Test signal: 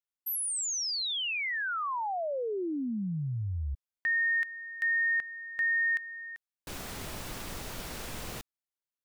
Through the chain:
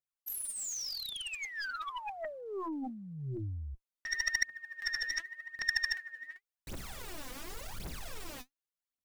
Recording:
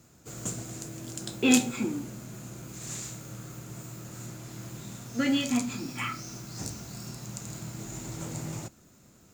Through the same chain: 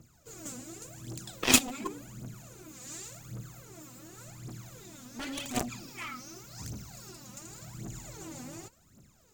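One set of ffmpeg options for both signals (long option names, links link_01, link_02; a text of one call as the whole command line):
ffmpeg -i in.wav -af "aphaser=in_gain=1:out_gain=1:delay=4.1:decay=0.77:speed=0.89:type=triangular,aeval=exprs='0.631*(cos(1*acos(clip(val(0)/0.631,-1,1)))-cos(1*PI/2))+0.0141*(cos(4*acos(clip(val(0)/0.631,-1,1)))-cos(4*PI/2))+0.126*(cos(7*acos(clip(val(0)/0.631,-1,1)))-cos(7*PI/2))':channel_layout=same" out.wav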